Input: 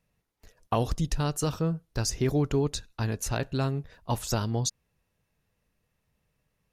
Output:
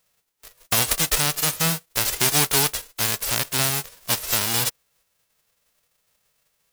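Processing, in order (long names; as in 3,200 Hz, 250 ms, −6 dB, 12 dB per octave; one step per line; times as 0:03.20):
spectral envelope flattened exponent 0.1
level +5.5 dB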